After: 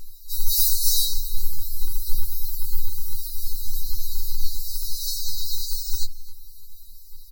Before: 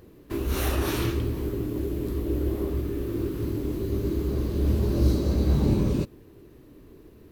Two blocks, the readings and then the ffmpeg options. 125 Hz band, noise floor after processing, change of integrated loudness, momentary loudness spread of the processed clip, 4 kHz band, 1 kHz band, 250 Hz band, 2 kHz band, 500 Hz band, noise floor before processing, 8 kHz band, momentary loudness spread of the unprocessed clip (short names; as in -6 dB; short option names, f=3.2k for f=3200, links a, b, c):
-12.0 dB, -40 dBFS, +0.5 dB, 12 LU, +12.0 dB, under -30 dB, -30.0 dB, under -35 dB, under -35 dB, -51 dBFS, +15.0 dB, 7 LU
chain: -filter_complex "[0:a]aeval=exprs='val(0)+0.00316*(sin(2*PI*50*n/s)+sin(2*PI*2*50*n/s)/2+sin(2*PI*3*50*n/s)/3+sin(2*PI*4*50*n/s)/4+sin(2*PI*5*50*n/s)/5)':c=same,bandreject=f=50:t=h:w=6,bandreject=f=100:t=h:w=6,bandreject=f=150:t=h:w=6,aeval=exprs='0.299*sin(PI/2*7.08*val(0)/0.299)':c=same,afftfilt=real='re*(1-between(b*sr/4096,120,3900))':imag='im*(1-between(b*sr/4096,120,3900))':win_size=4096:overlap=0.75,equalizer=f=16k:w=5.9:g=14.5,afreqshift=-58,asplit=2[a][b];[b]adelay=264,lowpass=f=3k:p=1,volume=-14.5dB,asplit=2[c][d];[d]adelay=264,lowpass=f=3k:p=1,volume=0.27,asplit=2[e][f];[f]adelay=264,lowpass=f=3k:p=1,volume=0.27[g];[a][c][e][g]amix=inputs=4:normalize=0,afftfilt=real='re*3.46*eq(mod(b,12),0)':imag='im*3.46*eq(mod(b,12),0)':win_size=2048:overlap=0.75"